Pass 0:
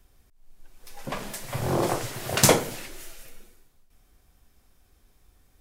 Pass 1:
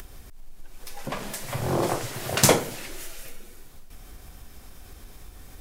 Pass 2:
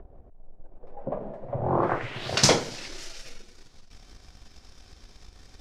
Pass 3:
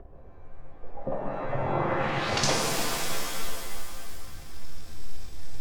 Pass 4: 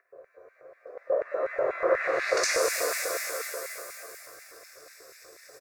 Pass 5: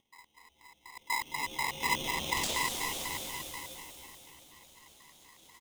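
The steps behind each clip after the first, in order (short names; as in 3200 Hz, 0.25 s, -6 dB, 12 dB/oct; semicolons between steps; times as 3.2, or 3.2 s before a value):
upward compressor, threshold -28 dBFS
sample leveller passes 1; low-pass sweep 620 Hz -> 5300 Hz, 1.57–2.37; gain -5.5 dB
compressor 2.5:1, threshold -29 dBFS, peak gain reduction 10 dB; shimmer reverb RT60 2.4 s, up +7 st, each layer -2 dB, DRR 0.5 dB
LFO high-pass square 4.1 Hz 490–2100 Hz; fixed phaser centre 850 Hz, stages 6; frequency-shifting echo 0.216 s, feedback 43%, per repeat +46 Hz, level -15 dB; gain +2.5 dB
polarity switched at an audio rate 1500 Hz; gain -6.5 dB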